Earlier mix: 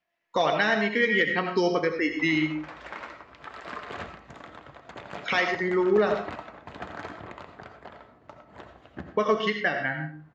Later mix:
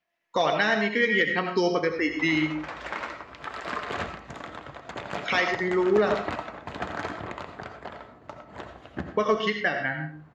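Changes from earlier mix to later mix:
background +5.5 dB; master: add high shelf 8300 Hz +6.5 dB

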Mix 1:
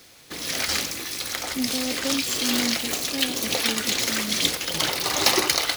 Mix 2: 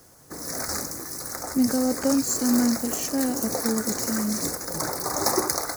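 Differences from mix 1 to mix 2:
speech +6.5 dB; background: add Butterworth band-stop 3000 Hz, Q 0.65

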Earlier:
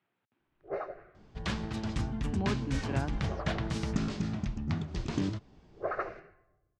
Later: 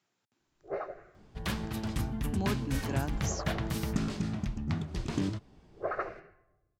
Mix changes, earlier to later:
speech: remove LPF 3000 Hz 24 dB/oct; master: remove LPF 7300 Hz 24 dB/oct

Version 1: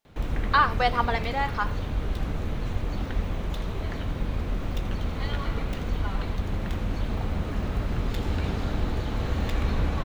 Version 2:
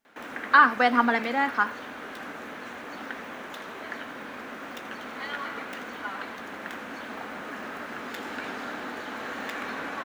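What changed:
background: add HPF 610 Hz 12 dB/oct; master: add fifteen-band EQ 250 Hz +12 dB, 1600 Hz +8 dB, 4000 Hz -4 dB

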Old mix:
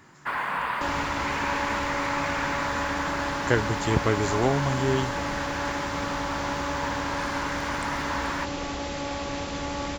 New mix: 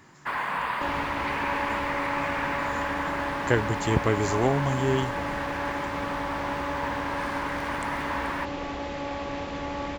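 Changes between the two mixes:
second sound: add tone controls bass -3 dB, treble -14 dB; master: add bell 1400 Hz -4 dB 0.2 oct

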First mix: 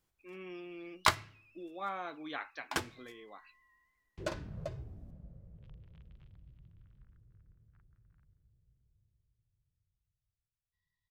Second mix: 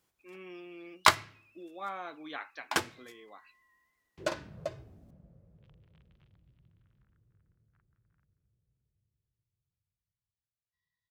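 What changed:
first sound +5.5 dB; master: add HPF 180 Hz 6 dB/oct

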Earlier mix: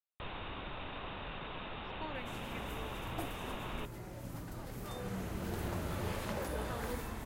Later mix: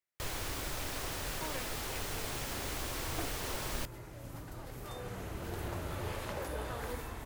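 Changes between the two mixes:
speech: entry -0.60 s; first sound: remove rippled Chebyshev low-pass 3800 Hz, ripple 6 dB; master: add bell 200 Hz -9.5 dB 0.45 oct

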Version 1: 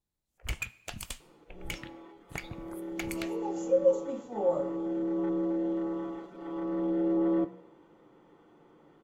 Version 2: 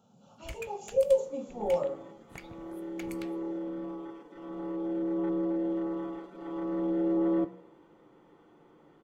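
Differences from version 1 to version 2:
speech: entry -2.75 s; first sound -8.0 dB

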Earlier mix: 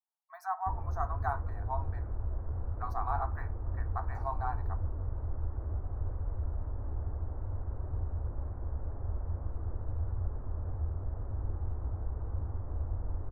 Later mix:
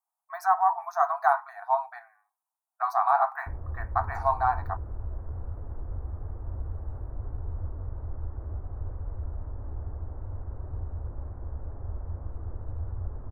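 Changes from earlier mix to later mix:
speech +12.0 dB; background: entry +2.80 s

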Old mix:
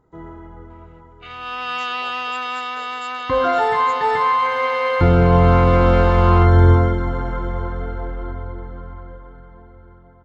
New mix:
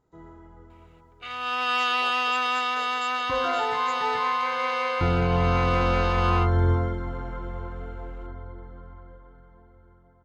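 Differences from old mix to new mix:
first sound -10.0 dB; second sound: remove air absorption 78 m

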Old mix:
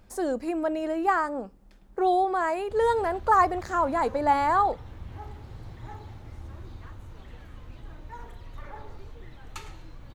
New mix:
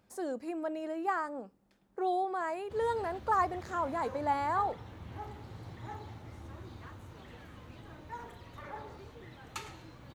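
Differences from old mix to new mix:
speech -8.5 dB; master: add HPF 110 Hz 12 dB/oct

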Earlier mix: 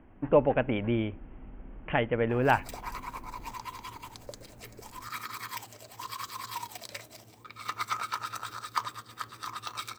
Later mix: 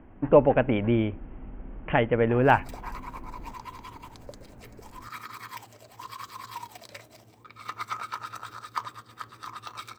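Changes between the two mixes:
speech +5.0 dB; master: add high shelf 2900 Hz -7 dB

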